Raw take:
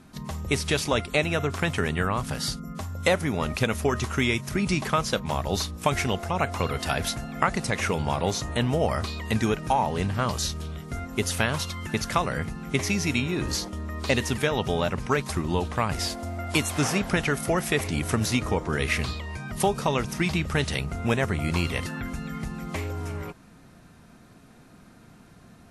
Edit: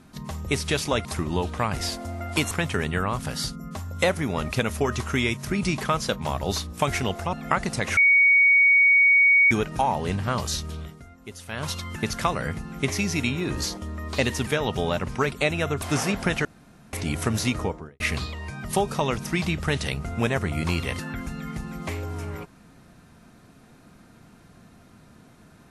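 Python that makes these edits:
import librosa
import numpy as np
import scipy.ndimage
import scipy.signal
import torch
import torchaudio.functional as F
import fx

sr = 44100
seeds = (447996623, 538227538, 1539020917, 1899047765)

y = fx.studio_fade_out(x, sr, start_s=18.41, length_s=0.46)
y = fx.edit(y, sr, fx.swap(start_s=1.05, length_s=0.5, other_s=15.23, other_length_s=1.46),
    fx.cut(start_s=6.37, length_s=0.87),
    fx.bleep(start_s=7.88, length_s=1.54, hz=2240.0, db=-13.5),
    fx.fade_down_up(start_s=10.73, length_s=0.88, db=-14.0, fade_s=0.21),
    fx.room_tone_fill(start_s=17.32, length_s=0.48), tone=tone)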